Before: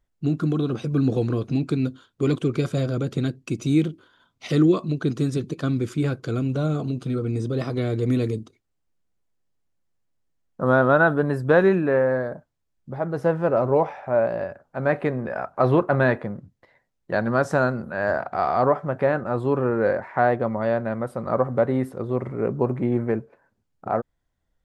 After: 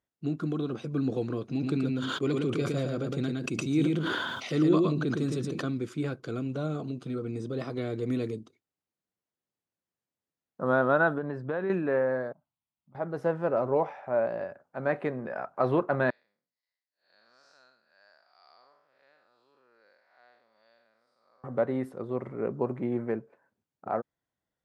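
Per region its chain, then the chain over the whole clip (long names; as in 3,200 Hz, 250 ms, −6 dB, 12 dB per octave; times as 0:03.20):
0:01.48–0:05.70: single-tap delay 113 ms −5.5 dB + level that may fall only so fast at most 25 dB per second
0:11.18–0:11.70: downward compressor 4 to 1, threshold −21 dBFS + high-frequency loss of the air 150 metres
0:12.32–0:12.95: downward compressor 2.5 to 1, threshold −54 dBFS + phaser with its sweep stopped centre 1,700 Hz, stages 6
0:16.10–0:21.44: spectrum smeared in time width 187 ms + resonant band-pass 4,800 Hz, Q 6
whole clip: Bessel high-pass filter 170 Hz; high-shelf EQ 6,900 Hz −5.5 dB; level −6 dB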